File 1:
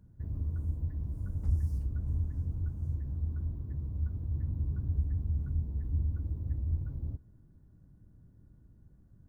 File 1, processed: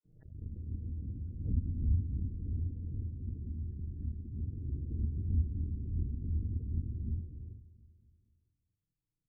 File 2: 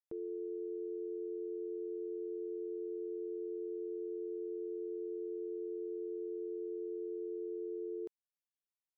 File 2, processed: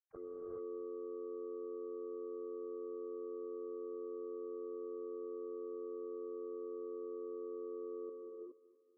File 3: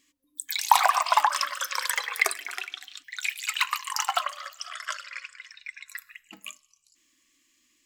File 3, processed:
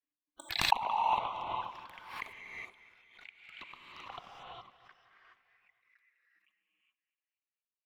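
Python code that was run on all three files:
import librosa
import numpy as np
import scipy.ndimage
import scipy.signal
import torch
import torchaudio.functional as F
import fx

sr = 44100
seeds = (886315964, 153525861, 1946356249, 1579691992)

y = fx.dispersion(x, sr, late='lows', ms=49.0, hz=370.0)
y = fx.power_curve(y, sr, exponent=2.0)
y = fx.env_flanger(y, sr, rest_ms=6.6, full_db=-40.5)
y = fx.spec_gate(y, sr, threshold_db=-30, keep='strong')
y = fx.air_absorb(y, sr, metres=400.0)
y = fx.echo_feedback(y, sr, ms=238, feedback_pct=56, wet_db=-17.5)
y = fx.rev_gated(y, sr, seeds[0], gate_ms=440, shape='rising', drr_db=-2.0)
y = fx.pre_swell(y, sr, db_per_s=79.0)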